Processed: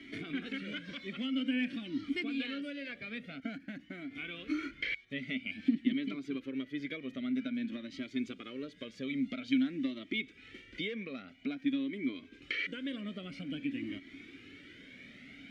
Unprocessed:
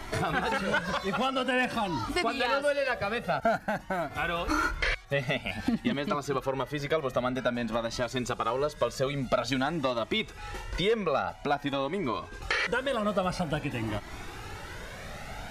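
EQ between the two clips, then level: vowel filter i; +4.5 dB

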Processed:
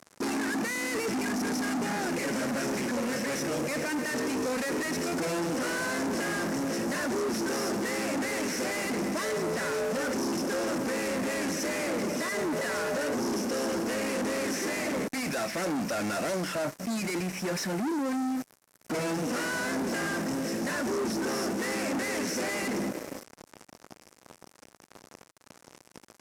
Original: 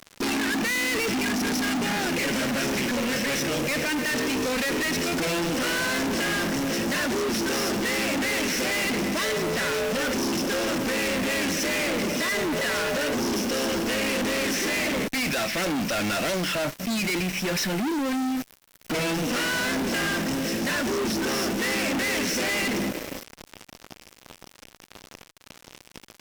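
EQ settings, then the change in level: HPF 160 Hz 6 dB/oct; LPF 11000 Hz 12 dB/oct; bell 3200 Hz -11 dB 1.3 oct; -2.0 dB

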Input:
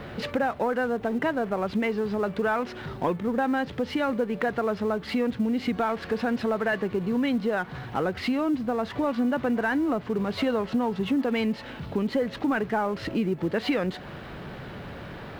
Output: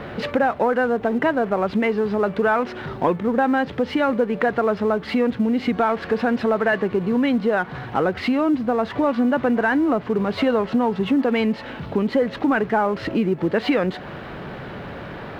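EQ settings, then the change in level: low shelf 170 Hz -6 dB; high shelf 4300 Hz -11 dB; +7.5 dB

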